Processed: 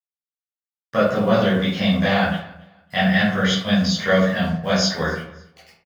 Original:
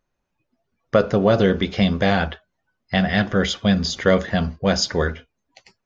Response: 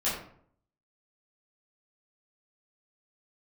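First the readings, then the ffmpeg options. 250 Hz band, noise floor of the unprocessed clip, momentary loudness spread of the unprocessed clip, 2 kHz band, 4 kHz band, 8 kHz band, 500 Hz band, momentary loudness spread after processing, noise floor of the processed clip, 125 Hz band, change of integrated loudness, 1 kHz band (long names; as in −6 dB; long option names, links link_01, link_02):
+1.0 dB, −76 dBFS, 7 LU, +3.0 dB, +2.0 dB, can't be measured, −1.0 dB, 8 LU, below −85 dBFS, 0.0 dB, +0.5 dB, +1.5 dB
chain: -filter_complex "[0:a]highpass=140,equalizer=frequency=360:width_type=o:width=1.2:gain=-10,acrusher=bits=7:mix=0:aa=0.5,aecho=1:1:277|554:0.0668|0.018[link_01];[1:a]atrim=start_sample=2205[link_02];[link_01][link_02]afir=irnorm=-1:irlink=0,volume=-5.5dB"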